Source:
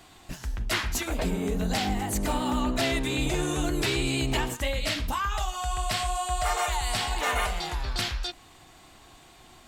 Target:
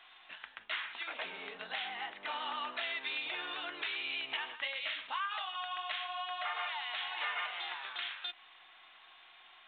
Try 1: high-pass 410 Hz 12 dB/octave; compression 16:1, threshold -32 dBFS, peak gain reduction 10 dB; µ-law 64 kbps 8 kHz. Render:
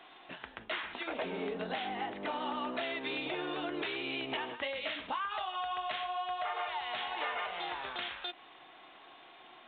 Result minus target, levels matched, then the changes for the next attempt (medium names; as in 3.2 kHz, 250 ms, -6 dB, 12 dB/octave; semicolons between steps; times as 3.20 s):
500 Hz band +10.0 dB
change: high-pass 1.3 kHz 12 dB/octave